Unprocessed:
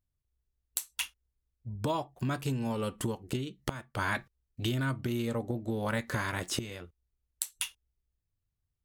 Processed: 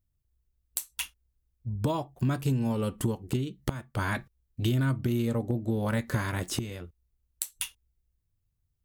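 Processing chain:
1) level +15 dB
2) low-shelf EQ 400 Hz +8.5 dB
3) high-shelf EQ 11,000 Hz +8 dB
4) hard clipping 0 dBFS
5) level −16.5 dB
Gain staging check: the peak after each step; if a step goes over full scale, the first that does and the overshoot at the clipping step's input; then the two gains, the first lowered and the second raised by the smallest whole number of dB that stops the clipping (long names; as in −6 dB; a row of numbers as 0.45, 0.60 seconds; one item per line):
+0.5, +4.0, +5.0, 0.0, −16.5 dBFS
step 1, 5.0 dB
step 1 +10 dB, step 5 −11.5 dB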